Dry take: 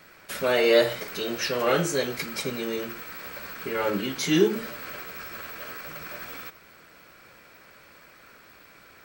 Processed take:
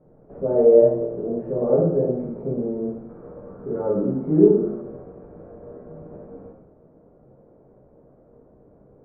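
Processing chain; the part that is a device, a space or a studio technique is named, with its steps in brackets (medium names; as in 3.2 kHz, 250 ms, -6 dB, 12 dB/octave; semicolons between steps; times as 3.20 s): next room (low-pass 610 Hz 24 dB/octave; reverberation RT60 0.75 s, pre-delay 14 ms, DRR -4 dB); 3.09–4.82 s: peaking EQ 1.3 kHz +8.5 dB 0.56 oct; trim +1 dB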